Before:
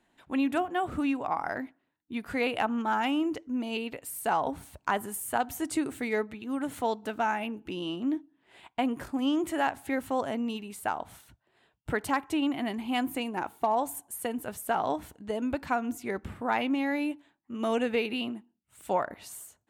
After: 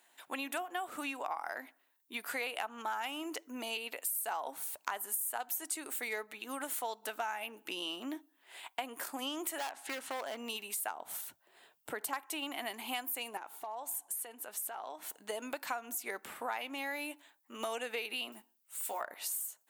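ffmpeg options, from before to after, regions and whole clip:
ffmpeg -i in.wav -filter_complex "[0:a]asettb=1/sr,asplit=3[link_01][link_02][link_03];[link_01]atrim=end=9.584[link_04];[link_02]atrim=start=9.58:end=10.37,asetpts=PTS-STARTPTS,afade=type=in:duration=0.004:curve=qsin,afade=type=out:start_time=0.786:duration=0.004:curve=qsin,lowpass=6200,asoftclip=type=hard:threshold=-28dB[link_05];[link_03]atrim=start=10.366[link_06];[link_04][link_05]acrossfade=duration=0.004:curve1=hsin:curve2=qsin[link_07];[link_07][link_06]acrossfade=duration=0.004:curve1=qsin:curve2=hsin,asettb=1/sr,asplit=3[link_08][link_09][link_10];[link_08]atrim=end=10.914[link_11];[link_09]atrim=start=10.91:end=12.13,asetpts=PTS-STARTPTS,afade=type=in:duration=0.004:curve=qsin,afade=type=out:start_time=1.216:duration=0.004:curve=qsin,lowshelf=frequency=480:gain=11.5,acompressor=threshold=-42dB:ratio=1.5:attack=3.2:release=140:knee=1:detection=peak[link_12];[link_10]atrim=start=12.126[link_13];[link_11][link_12]acrossfade=duration=0.004:curve1=hsin:curve2=qsin[link_14];[link_14][link_13]acrossfade=duration=0.004:curve1=qsin:curve2=hsin,asettb=1/sr,asplit=3[link_15][link_16][link_17];[link_15]atrim=end=13.374[link_18];[link_16]atrim=start=13.37:end=15.1,asetpts=PTS-STARTPTS,afade=type=in:duration=0.004:curve=qsin,afade=type=out:start_time=1.726:duration=0.004:curve=qsin,highshelf=frequency=9600:gain=-11.5,acompressor=threshold=-45dB:ratio=3:attack=3.2:release=140:knee=1:detection=peak[link_19];[link_17]atrim=start=15.096[link_20];[link_18][link_19]acrossfade=duration=0.004:curve1=hsin:curve2=qsin[link_21];[link_21][link_20]acrossfade=duration=0.004:curve1=qsin:curve2=hsin,asettb=1/sr,asplit=3[link_22][link_23][link_24];[link_22]atrim=end=18.324[link_25];[link_23]atrim=start=18.32:end=19.01,asetpts=PTS-STARTPTS,afade=type=in:duration=0.004:curve=qsin,afade=type=out:start_time=0.686:duration=0.004:curve=qsin,acompressor=threshold=-39dB:ratio=2:attack=3.2:release=140:knee=1:detection=peak,acrusher=bits=9:mode=log:mix=0:aa=0.000001,asplit=2[link_26][link_27];[link_27]adelay=14,volume=-6dB[link_28];[link_26][link_28]amix=inputs=2:normalize=0,atrim=end_sample=30429[link_29];[link_24]atrim=start=19.006[link_30];[link_25][link_29]acrossfade=duration=0.004:curve1=hsin:curve2=qsin[link_31];[link_31][link_30]acrossfade=duration=0.004:curve1=qsin:curve2=hsin,highpass=610,aemphasis=mode=production:type=50fm,acompressor=threshold=-39dB:ratio=4,volume=3dB" out.wav

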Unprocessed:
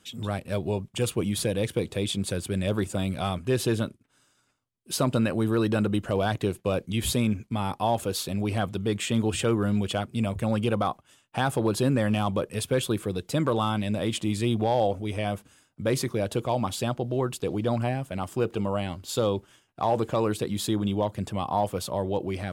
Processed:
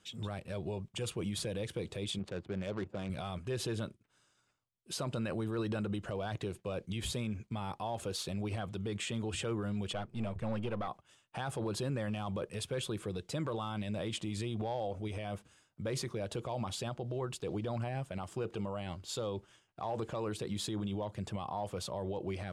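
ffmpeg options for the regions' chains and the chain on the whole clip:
ffmpeg -i in.wav -filter_complex "[0:a]asettb=1/sr,asplit=3[link_01][link_02][link_03];[link_01]atrim=end=2.194[link_04];[link_02]atrim=start=2.19:end=3.1,asetpts=PTS-STARTPTS,afade=type=in:duration=0.004:curve=qsin,afade=type=out:start_time=0.906:duration=0.004:curve=qsin,highpass=frequency=180:poles=1,adynamicsmooth=sensitivity=5.5:basefreq=500[link_05];[link_03]atrim=start=3.096[link_06];[link_04][link_05]acrossfade=duration=0.004:curve1=hsin:curve2=qsin[link_07];[link_07][link_06]acrossfade=duration=0.004:curve1=qsin:curve2=hsin,asettb=1/sr,asplit=3[link_08][link_09][link_10];[link_08]atrim=end=9.934[link_11];[link_09]atrim=start=9.93:end=10.88,asetpts=PTS-STARTPTS,afade=type=in:duration=0.004:curve=qsin,afade=type=out:start_time=0.946:duration=0.004:curve=qsin,aeval=exprs='if(lt(val(0),0),0.447*val(0),val(0))':channel_layout=same,lowpass=frequency=3400:poles=1[link_12];[link_10]atrim=start=10.876[link_13];[link_11][link_12]acrossfade=duration=0.004:curve1=hsin:curve2=qsin[link_14];[link_14][link_13]acrossfade=duration=0.004:curve1=qsin:curve2=hsin,lowpass=8500,equalizer=frequency=260:width=5:gain=-7.5,alimiter=limit=-22.5dB:level=0:latency=1:release=46,volume=-5.5dB" out.wav

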